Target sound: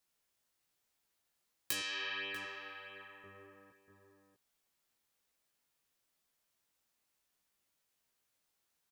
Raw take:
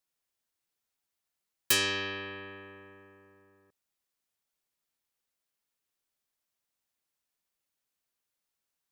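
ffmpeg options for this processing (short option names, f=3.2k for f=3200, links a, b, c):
-filter_complex "[0:a]asettb=1/sr,asplit=3[a][b][c];[a]atrim=end=1.804[d];[b]atrim=start=1.8:end=3.24,asetpts=PTS-STARTPTS,afade=t=in:d=0.004:c=qsin,afade=t=out:st=1.436:d=0.004:c=qsin,highpass=f=1.4k:p=1[e];[c]atrim=start=3.236[f];[d][e]acrossfade=d=0.004:c1=hsin:c2=qsin[g];[g][f]acrossfade=d=0.004:c1=qsin:c2=hsin,acompressor=threshold=-39dB:ratio=8,flanger=delay=16.5:depth=3.6:speed=1.1,asplit=2[h][i];[i]adelay=641.4,volume=-7dB,highshelf=f=4k:g=-14.4[j];[h][j]amix=inputs=2:normalize=0,volume=7dB"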